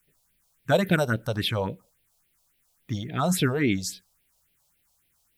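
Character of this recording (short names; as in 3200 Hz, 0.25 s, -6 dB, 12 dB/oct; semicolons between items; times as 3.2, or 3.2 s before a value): a quantiser's noise floor 12-bit, dither triangular; phasing stages 4, 3.6 Hz, lowest notch 280–1200 Hz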